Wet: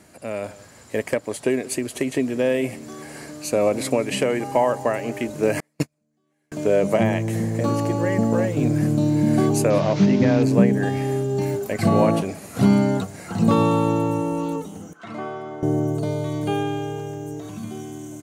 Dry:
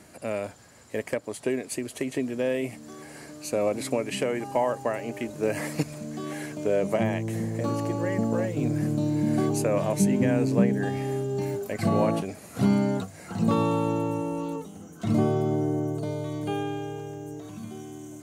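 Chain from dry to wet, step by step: 9.70–10.43 s: one-bit delta coder 32 kbps, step -37 dBFS; echo from a far wall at 31 m, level -21 dB; level rider gain up to 6 dB; 5.60–6.52 s: gate -18 dBFS, range -43 dB; 14.93–15.63 s: band-pass filter 1.5 kHz, Q 1.3

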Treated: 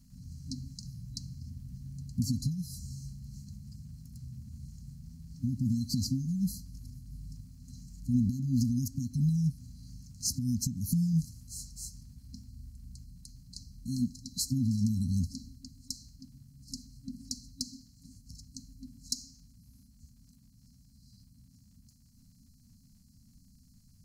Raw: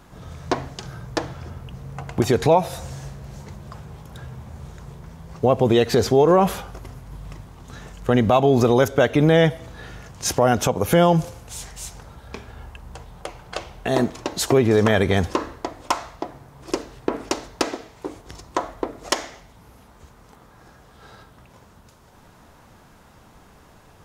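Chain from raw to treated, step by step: FFT band-reject 270–4000 Hz; crackle 430 per s -57 dBFS, from 12.47 s 140 per s; trim -7 dB

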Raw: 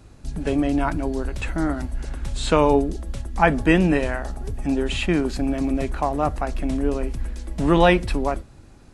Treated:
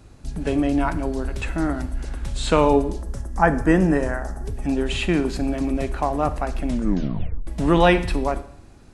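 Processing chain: 3.02–4.46 s: high-order bell 3.1 kHz -11.5 dB 1.2 oct; Schroeder reverb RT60 0.69 s, combs from 31 ms, DRR 12.5 dB; 6.68 s: tape stop 0.79 s

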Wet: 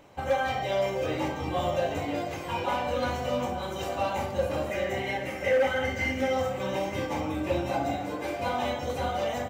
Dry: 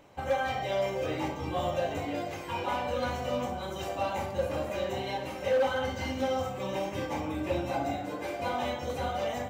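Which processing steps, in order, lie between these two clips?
4.70–6.33 s: graphic EQ with 31 bands 1 kHz -9 dB, 2 kHz +11 dB, 4 kHz -8 dB; delay 897 ms -14.5 dB; trim +2.5 dB

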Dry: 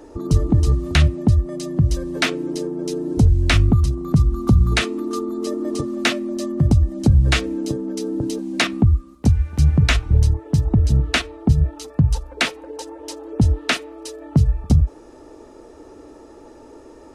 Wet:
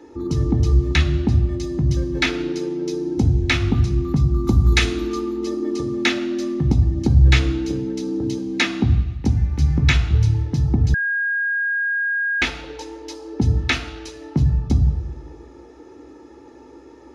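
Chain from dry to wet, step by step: 4.44–5.07 s: treble shelf 6.1 kHz +11 dB; reverberation RT60 1.1 s, pre-delay 3 ms, DRR 7 dB; 10.94–12.42 s: bleep 1.63 kHz -10.5 dBFS; trim -8 dB

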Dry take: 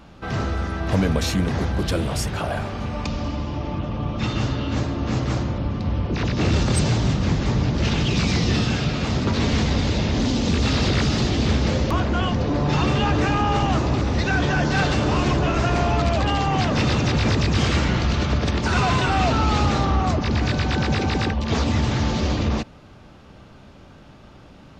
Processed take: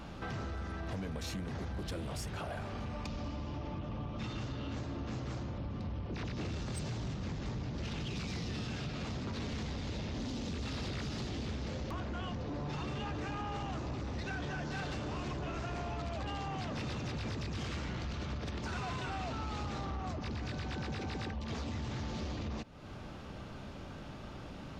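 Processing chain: compression 4:1, threshold -38 dBFS, peak gain reduction 19 dB; saturation -31.5 dBFS, distortion -19 dB

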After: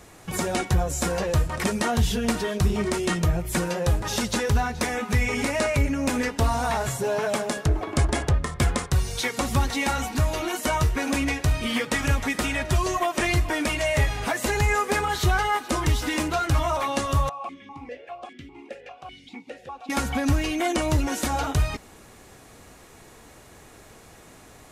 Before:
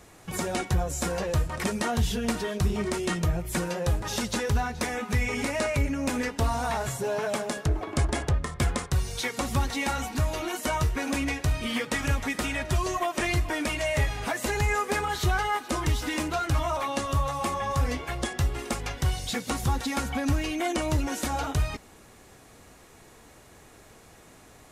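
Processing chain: 17.29–19.90 s: stepped vowel filter 5 Hz; trim +3.5 dB

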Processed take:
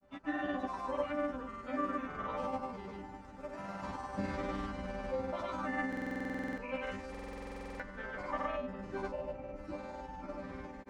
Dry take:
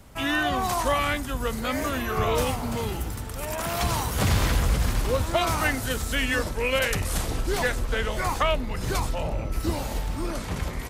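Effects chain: high-pass 92 Hz 6 dB/octave; peaking EQ 3.3 kHz -7 dB 0.65 oct; chord resonator G3 sus4, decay 0.65 s; granulator 100 ms, pitch spread up and down by 0 st; tape spacing loss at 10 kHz 29 dB; buffer glitch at 5.88/7.10 s, samples 2048, times 14; trim +13 dB

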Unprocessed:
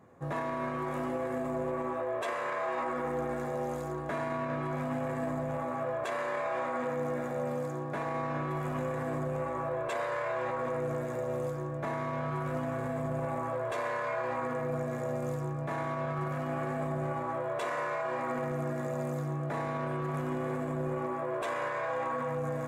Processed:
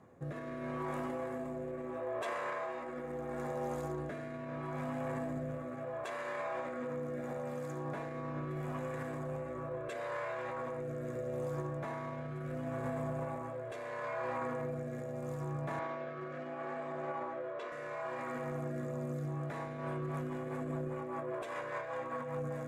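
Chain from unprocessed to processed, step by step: 15.79–17.72 s: three-band isolator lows -16 dB, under 270 Hz, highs -22 dB, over 5.9 kHz; peak limiter -31 dBFS, peak gain reduction 7 dB; rotary cabinet horn 0.75 Hz, later 5 Hz, at 19.28 s; trim +1.5 dB

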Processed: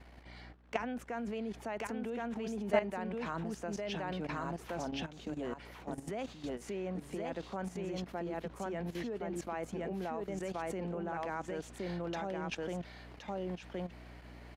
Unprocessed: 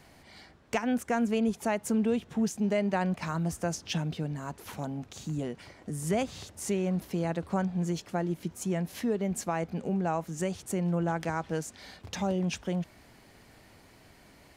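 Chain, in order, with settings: three-band isolator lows -22 dB, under 210 Hz, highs -13 dB, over 4 kHz; delay 1070 ms -3 dB; hum 60 Hz, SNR 19 dB; level held to a coarse grid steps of 13 dB; trim +1 dB

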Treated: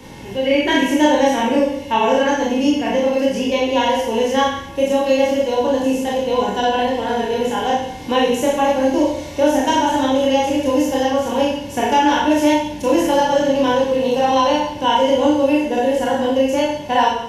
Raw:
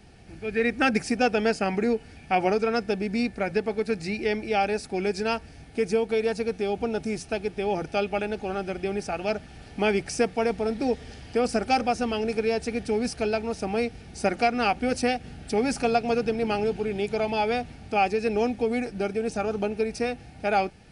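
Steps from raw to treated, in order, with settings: harmonic-percussive split harmonic +7 dB; Schroeder reverb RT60 0.79 s, combs from 25 ms, DRR -5.5 dB; tape speed +21%; three bands compressed up and down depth 40%; trim -3.5 dB

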